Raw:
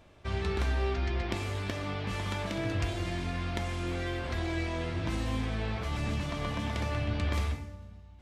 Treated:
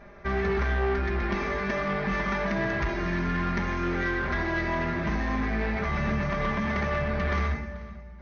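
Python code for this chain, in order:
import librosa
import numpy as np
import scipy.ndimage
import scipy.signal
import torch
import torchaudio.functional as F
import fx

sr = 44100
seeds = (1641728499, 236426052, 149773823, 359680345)

p1 = fx.high_shelf_res(x, sr, hz=2400.0, db=-7.0, q=3.0)
p2 = p1 + 0.97 * np.pad(p1, (int(5.0 * sr / 1000.0), 0))[:len(p1)]
p3 = fx.rider(p2, sr, range_db=10, speed_s=0.5)
p4 = p2 + (p3 * librosa.db_to_amplitude(-1.0))
p5 = 10.0 ** (-21.0 / 20.0) * np.tanh(p4 / 10.0 ** (-21.0 / 20.0))
p6 = fx.brickwall_lowpass(p5, sr, high_hz=6500.0)
y = p6 + fx.echo_multitap(p6, sr, ms=(81, 437), db=(-16.5, -19.5), dry=0)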